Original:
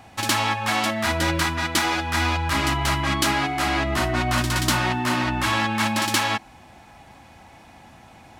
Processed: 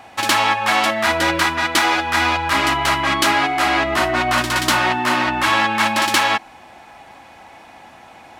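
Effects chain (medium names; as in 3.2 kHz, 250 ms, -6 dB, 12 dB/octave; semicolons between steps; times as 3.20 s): tone controls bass -13 dB, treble -5 dB; trim +7 dB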